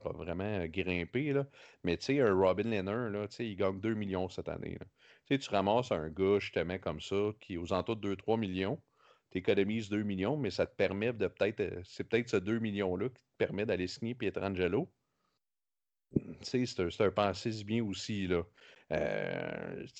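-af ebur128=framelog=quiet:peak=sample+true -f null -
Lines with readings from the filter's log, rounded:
Integrated loudness:
  I:         -34.5 LUFS
  Threshold: -44.7 LUFS
Loudness range:
  LRA:         3.0 LU
  Threshold: -54.8 LUFS
  LRA low:   -36.4 LUFS
  LRA high:  -33.4 LUFS
Sample peak:
  Peak:      -14.3 dBFS
True peak:
  Peak:      -14.3 dBFS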